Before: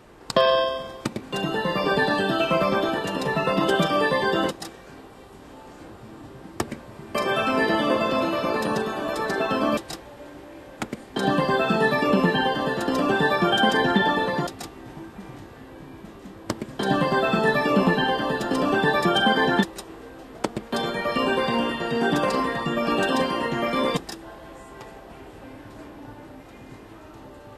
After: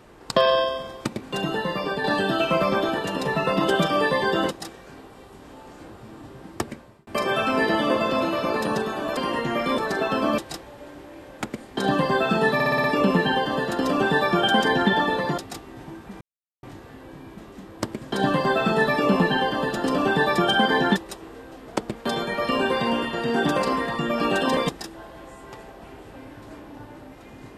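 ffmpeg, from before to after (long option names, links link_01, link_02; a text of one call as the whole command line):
ffmpeg -i in.wav -filter_complex "[0:a]asplit=12[link_01][link_02][link_03][link_04][link_05][link_06][link_07][link_08][link_09][link_10][link_11][link_12];[link_01]atrim=end=2.04,asetpts=PTS-STARTPTS,afade=type=out:start_time=1.5:duration=0.54:silence=0.421697[link_13];[link_02]atrim=start=2.04:end=7.07,asetpts=PTS-STARTPTS,afade=type=in:duration=0.004:curve=hsin:silence=0.421697,afade=type=out:start_time=4.39:duration=0.64:curve=qsin[link_14];[link_03]atrim=start=7.07:end=9.172,asetpts=PTS-STARTPTS,afade=type=in:duration=0.004:curve=hsin[link_15];[link_04]atrim=start=23.238:end=23.852[link_16];[link_05]atrim=start=9.168:end=11.992[link_17];[link_06]atrim=start=11.928:end=11.992[link_18];[link_07]atrim=start=11.928:end=11.992[link_19];[link_08]atrim=start=11.928:end=11.992[link_20];[link_09]atrim=start=11.928:end=11.992[link_21];[link_10]atrim=start=11.928:end=15.3,asetpts=PTS-STARTPTS,afade=type=out:start_time=3.368:duration=0.004:curve=hsin,apad=pad_dur=0.42[link_22];[link_11]atrim=start=15.3:end=23.242,asetpts=PTS-STARTPTS,afade=type=in:duration=0.004:curve=hsin[link_23];[link_12]atrim=start=23.848[link_24];[link_13][link_14][link_15]concat=n=3:v=0:a=1[link_25];[link_25][link_16]acrossfade=duration=0.004:curve1=hsin:curve2=hsin[link_26];[link_26][link_17]acrossfade=duration=0.004:curve1=hsin:curve2=hsin[link_27];[link_27][link_18]acrossfade=duration=0.004:curve1=hsin:curve2=hsin[link_28];[link_28][link_19]acrossfade=duration=0.004:curve1=hsin:curve2=hsin[link_29];[link_29][link_20]acrossfade=duration=0.004:curve1=hsin:curve2=hsin[link_30];[link_30][link_21]acrossfade=duration=0.004:curve1=hsin:curve2=hsin[link_31];[link_22][link_23]concat=n=2:v=0:a=1[link_32];[link_31][link_32]acrossfade=duration=0.004:curve1=hsin:curve2=hsin[link_33];[link_33][link_24]acrossfade=duration=0.004:curve1=hsin:curve2=hsin" out.wav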